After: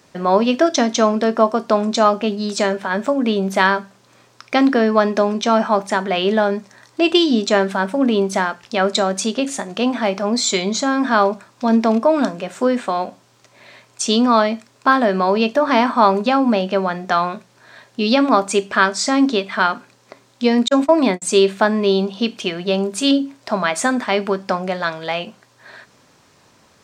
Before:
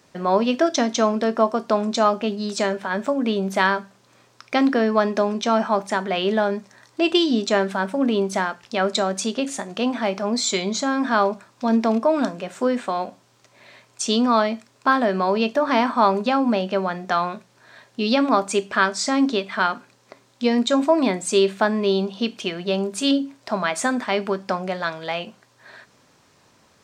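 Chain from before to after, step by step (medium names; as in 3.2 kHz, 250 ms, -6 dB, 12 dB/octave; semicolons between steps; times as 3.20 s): 20.68–21.22 s: gate -21 dBFS, range -46 dB; trim +4 dB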